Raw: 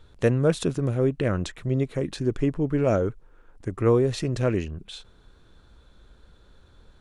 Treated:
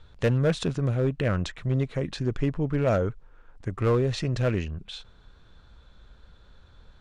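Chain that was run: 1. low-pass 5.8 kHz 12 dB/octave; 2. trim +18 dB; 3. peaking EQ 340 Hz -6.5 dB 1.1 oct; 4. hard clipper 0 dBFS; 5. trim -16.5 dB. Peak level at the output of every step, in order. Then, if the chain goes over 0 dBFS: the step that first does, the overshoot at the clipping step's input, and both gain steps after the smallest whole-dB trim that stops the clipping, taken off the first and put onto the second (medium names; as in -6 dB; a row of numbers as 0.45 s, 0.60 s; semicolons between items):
-9.0 dBFS, +9.0 dBFS, +7.0 dBFS, 0.0 dBFS, -16.5 dBFS; step 2, 7.0 dB; step 2 +11 dB, step 5 -9.5 dB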